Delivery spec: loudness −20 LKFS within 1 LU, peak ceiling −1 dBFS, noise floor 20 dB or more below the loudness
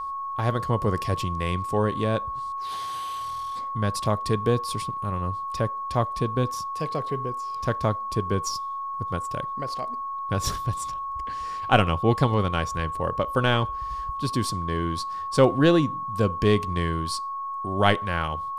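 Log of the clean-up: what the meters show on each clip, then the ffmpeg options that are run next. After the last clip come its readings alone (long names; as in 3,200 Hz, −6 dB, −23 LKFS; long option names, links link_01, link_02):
interfering tone 1,100 Hz; level of the tone −29 dBFS; integrated loudness −26.0 LKFS; sample peak −3.5 dBFS; target loudness −20.0 LKFS
→ -af "bandreject=frequency=1100:width=30"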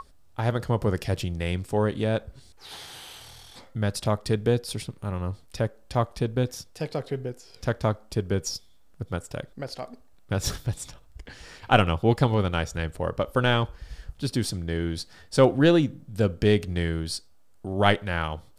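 interfering tone none found; integrated loudness −26.5 LKFS; sample peak −4.0 dBFS; target loudness −20.0 LKFS
→ -af "volume=6.5dB,alimiter=limit=-1dB:level=0:latency=1"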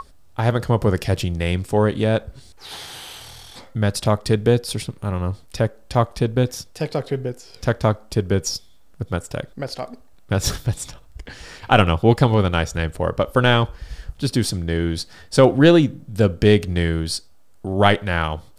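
integrated loudness −20.5 LKFS; sample peak −1.0 dBFS; background noise floor −46 dBFS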